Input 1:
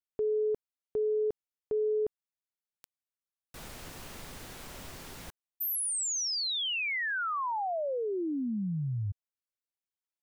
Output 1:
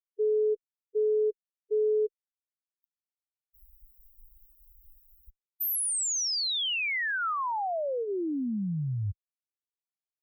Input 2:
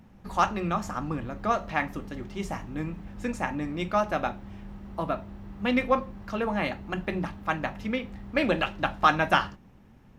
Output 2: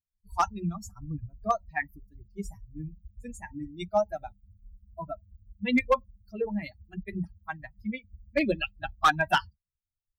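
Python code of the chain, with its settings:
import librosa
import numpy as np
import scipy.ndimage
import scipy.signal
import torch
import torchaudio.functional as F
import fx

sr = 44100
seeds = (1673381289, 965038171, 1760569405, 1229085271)

y = fx.bin_expand(x, sr, power=3.0)
y = fx.clip_asym(y, sr, top_db=-20.5, bottom_db=-18.0)
y = F.gain(torch.from_numpy(y), 4.5).numpy()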